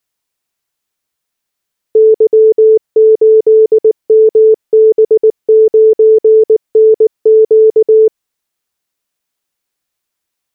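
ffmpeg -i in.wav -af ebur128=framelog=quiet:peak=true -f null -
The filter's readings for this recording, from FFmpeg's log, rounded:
Integrated loudness:
  I:          -8.2 LUFS
  Threshold: -18.2 LUFS
Loudness range:
  LRA:         4.0 LU
  Threshold: -29.1 LUFS
  LRA low:   -12.0 LUFS
  LRA high:   -8.0 LUFS
True peak:
  Peak:       -2.2 dBFS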